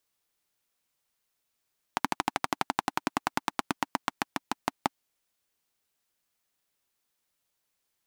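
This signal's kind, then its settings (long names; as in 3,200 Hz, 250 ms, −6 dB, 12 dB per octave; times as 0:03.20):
pulse-train model of a single-cylinder engine, changing speed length 3.02 s, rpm 1,600, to 600, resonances 280/850 Hz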